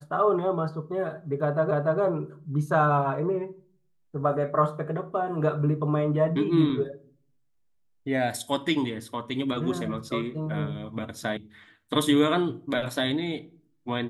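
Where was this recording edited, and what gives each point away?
1.71 repeat of the last 0.29 s
11.37 sound cut off

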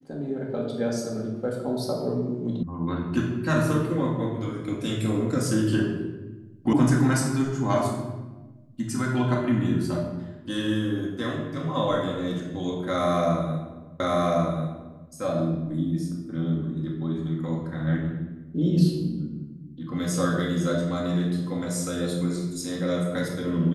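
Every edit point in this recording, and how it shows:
2.63 sound cut off
6.73 sound cut off
14 repeat of the last 1.09 s

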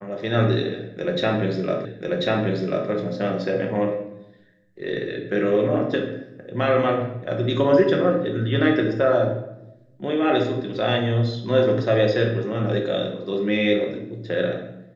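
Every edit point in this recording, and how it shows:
1.85 repeat of the last 1.04 s

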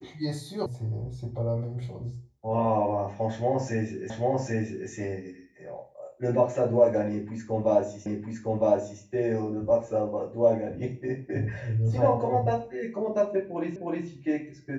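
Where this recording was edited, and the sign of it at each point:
0.66 sound cut off
4.1 repeat of the last 0.79 s
8.06 repeat of the last 0.96 s
13.76 repeat of the last 0.31 s

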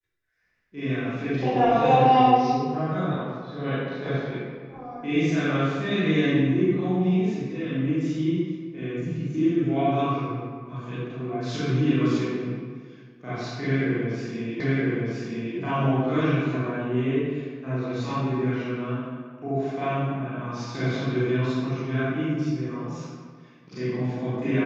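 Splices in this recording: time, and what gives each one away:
14.6 repeat of the last 0.97 s

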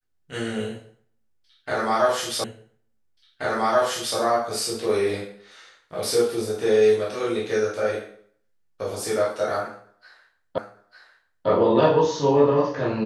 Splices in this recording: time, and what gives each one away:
2.44 repeat of the last 1.73 s
10.58 repeat of the last 0.9 s

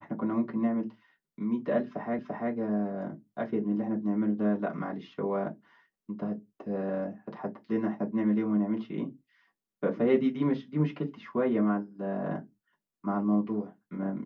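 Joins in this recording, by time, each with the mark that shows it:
2.19 repeat of the last 0.34 s

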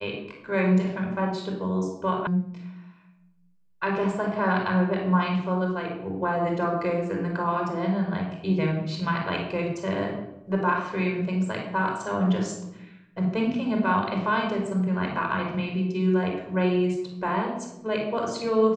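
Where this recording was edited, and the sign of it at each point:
2.27 sound cut off

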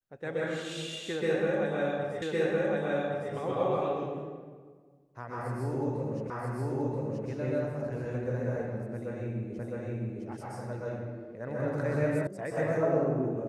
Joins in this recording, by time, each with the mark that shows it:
2.22 repeat of the last 1.11 s
6.3 repeat of the last 0.98 s
9.59 repeat of the last 0.66 s
12.27 sound cut off

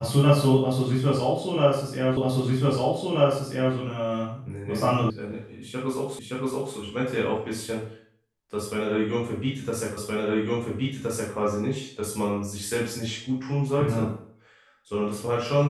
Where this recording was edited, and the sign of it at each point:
2.17 repeat of the last 1.58 s
5.1 sound cut off
6.19 repeat of the last 0.57 s
9.97 repeat of the last 1.37 s

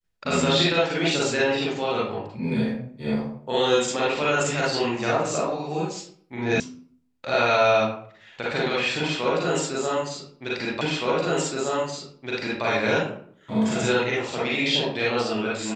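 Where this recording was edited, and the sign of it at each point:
6.6 sound cut off
10.81 repeat of the last 1.82 s

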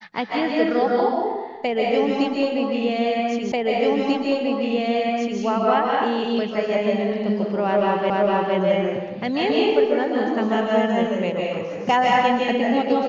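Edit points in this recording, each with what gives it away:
3.52 repeat of the last 1.89 s
8.1 repeat of the last 0.46 s

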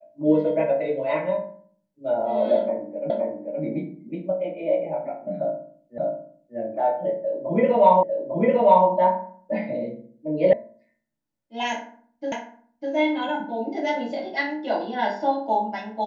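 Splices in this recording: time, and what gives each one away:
3.1 repeat of the last 0.52 s
5.98 repeat of the last 0.59 s
8.03 repeat of the last 0.85 s
10.53 sound cut off
12.32 repeat of the last 0.6 s

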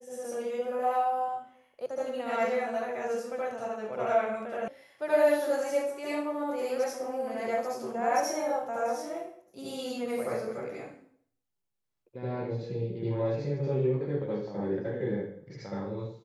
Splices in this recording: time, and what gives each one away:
1.86 sound cut off
4.68 sound cut off

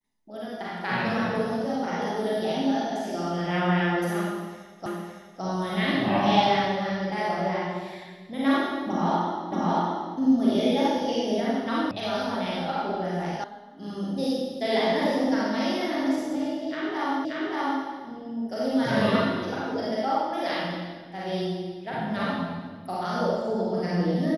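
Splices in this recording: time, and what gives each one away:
4.86 repeat of the last 0.56 s
9.52 repeat of the last 0.63 s
11.91 sound cut off
13.44 sound cut off
17.25 repeat of the last 0.58 s

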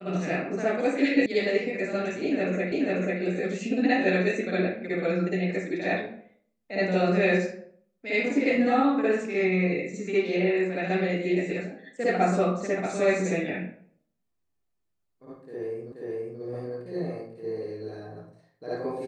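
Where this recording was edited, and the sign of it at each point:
1.26 sound cut off
2.72 repeat of the last 0.49 s
15.92 repeat of the last 0.48 s

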